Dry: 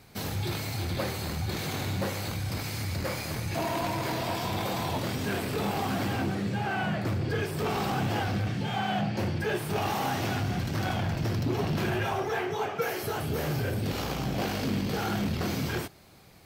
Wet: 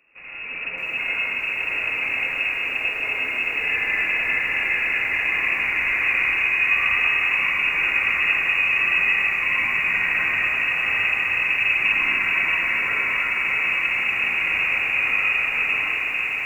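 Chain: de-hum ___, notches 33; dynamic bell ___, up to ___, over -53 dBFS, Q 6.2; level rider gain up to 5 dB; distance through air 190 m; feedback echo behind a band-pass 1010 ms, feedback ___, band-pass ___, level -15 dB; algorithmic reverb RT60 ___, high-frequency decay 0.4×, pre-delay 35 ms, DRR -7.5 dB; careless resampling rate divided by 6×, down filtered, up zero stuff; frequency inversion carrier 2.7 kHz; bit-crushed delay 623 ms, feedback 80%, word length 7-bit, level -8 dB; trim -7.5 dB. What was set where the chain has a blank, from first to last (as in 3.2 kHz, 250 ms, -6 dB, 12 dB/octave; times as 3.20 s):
225.8 Hz, 580 Hz, +7 dB, 72%, 450 Hz, 4.5 s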